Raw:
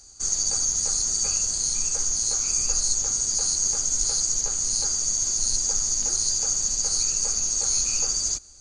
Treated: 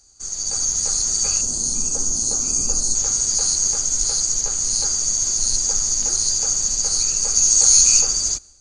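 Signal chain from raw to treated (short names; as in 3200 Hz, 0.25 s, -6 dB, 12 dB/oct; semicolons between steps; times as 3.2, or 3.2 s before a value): 1.41–2.95 graphic EQ 250/2000/4000 Hz +10/-12/-4 dB; AGC gain up to 12.5 dB; 7.34–8 high shelf 5100 Hz -> 3600 Hz +8.5 dB; gain -5 dB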